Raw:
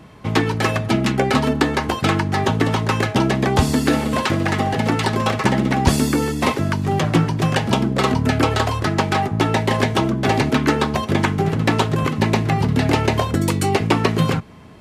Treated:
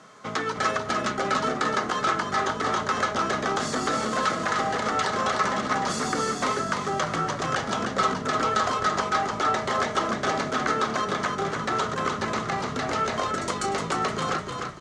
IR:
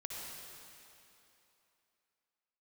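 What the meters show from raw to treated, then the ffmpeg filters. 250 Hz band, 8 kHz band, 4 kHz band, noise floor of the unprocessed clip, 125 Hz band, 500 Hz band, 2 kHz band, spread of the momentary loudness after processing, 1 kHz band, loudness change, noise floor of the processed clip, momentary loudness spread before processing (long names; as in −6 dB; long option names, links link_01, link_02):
−13.0 dB, −3.5 dB, −6.0 dB, −28 dBFS, −18.0 dB, −7.0 dB, −4.5 dB, 3 LU, −2.5 dB, −7.0 dB, −33 dBFS, 3 LU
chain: -filter_complex "[0:a]alimiter=limit=-12dB:level=0:latency=1:release=63,acrusher=bits=8:mix=0:aa=0.000001,highpass=320,equalizer=frequency=320:width_type=q:width=4:gain=-9,equalizer=frequency=900:width_type=q:width=4:gain=-5,equalizer=frequency=1300:width_type=q:width=4:gain=10,equalizer=frequency=2600:width_type=q:width=4:gain=-7,equalizer=frequency=6400:width_type=q:width=4:gain=5,lowpass=frequency=8200:width=0.5412,lowpass=frequency=8200:width=1.3066,asplit=2[link_01][link_02];[link_02]asplit=6[link_03][link_04][link_05][link_06][link_07][link_08];[link_03]adelay=302,afreqshift=-31,volume=-5dB[link_09];[link_04]adelay=604,afreqshift=-62,volume=-11.6dB[link_10];[link_05]adelay=906,afreqshift=-93,volume=-18.1dB[link_11];[link_06]adelay=1208,afreqshift=-124,volume=-24.7dB[link_12];[link_07]adelay=1510,afreqshift=-155,volume=-31.2dB[link_13];[link_08]adelay=1812,afreqshift=-186,volume=-37.8dB[link_14];[link_09][link_10][link_11][link_12][link_13][link_14]amix=inputs=6:normalize=0[link_15];[link_01][link_15]amix=inputs=2:normalize=0,volume=-2.5dB"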